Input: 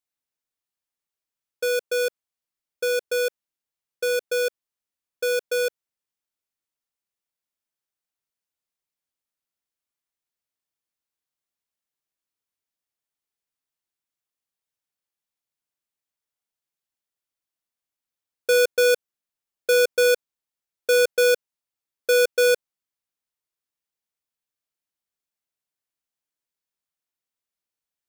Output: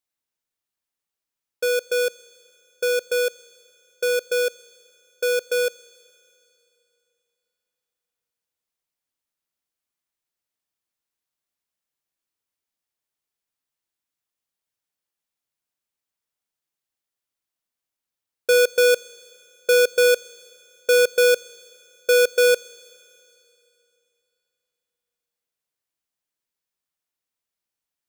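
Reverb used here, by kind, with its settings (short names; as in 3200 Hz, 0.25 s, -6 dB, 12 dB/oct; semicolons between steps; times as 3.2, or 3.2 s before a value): Schroeder reverb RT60 3 s, combs from 26 ms, DRR 19.5 dB; gain +2 dB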